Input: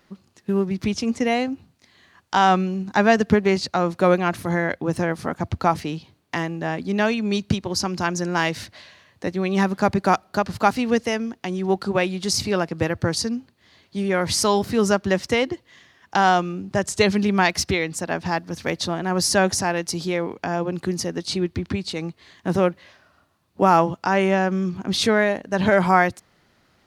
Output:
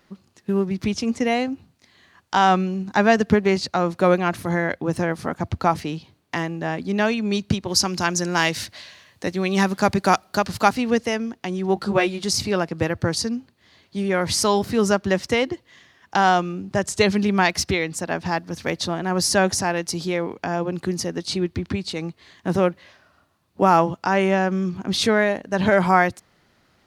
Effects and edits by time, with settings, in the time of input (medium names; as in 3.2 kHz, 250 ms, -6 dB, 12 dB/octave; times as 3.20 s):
7.68–10.69 s: treble shelf 2.7 kHz +8 dB
11.75–12.24 s: doubling 14 ms -3 dB